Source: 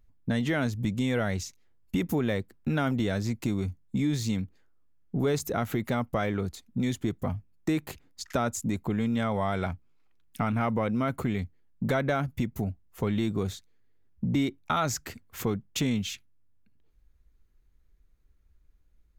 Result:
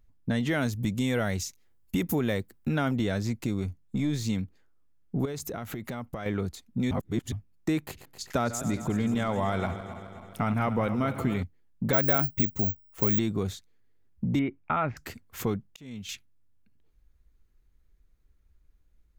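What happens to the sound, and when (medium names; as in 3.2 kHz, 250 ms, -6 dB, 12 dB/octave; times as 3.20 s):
0.51–2.69 s: treble shelf 7.4 kHz +9 dB
3.40–4.25 s: partial rectifier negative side -3 dB
5.25–6.26 s: compression 10:1, threshold -31 dBFS
6.91–7.32 s: reverse
7.83–11.43 s: backward echo that repeats 132 ms, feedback 74%, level -11.5 dB
11.93–13.19 s: careless resampling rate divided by 2×, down filtered, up zero stuff
14.39–14.97 s: Chebyshev low-pass 2.6 kHz, order 4
15.49–16.09 s: slow attack 729 ms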